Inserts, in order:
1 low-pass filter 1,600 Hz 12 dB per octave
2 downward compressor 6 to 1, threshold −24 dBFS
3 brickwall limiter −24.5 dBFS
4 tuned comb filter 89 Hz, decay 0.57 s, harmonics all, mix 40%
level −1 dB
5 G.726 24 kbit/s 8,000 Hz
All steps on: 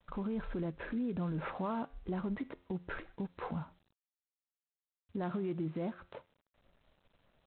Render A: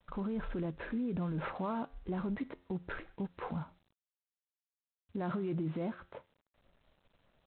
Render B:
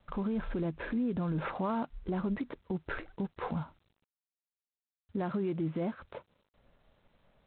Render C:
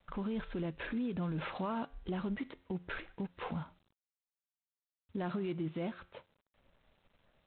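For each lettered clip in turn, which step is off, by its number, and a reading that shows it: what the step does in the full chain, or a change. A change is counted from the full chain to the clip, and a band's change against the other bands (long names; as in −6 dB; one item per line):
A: 2, average gain reduction 4.5 dB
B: 4, change in integrated loudness +3.5 LU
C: 1, 4 kHz band +7.0 dB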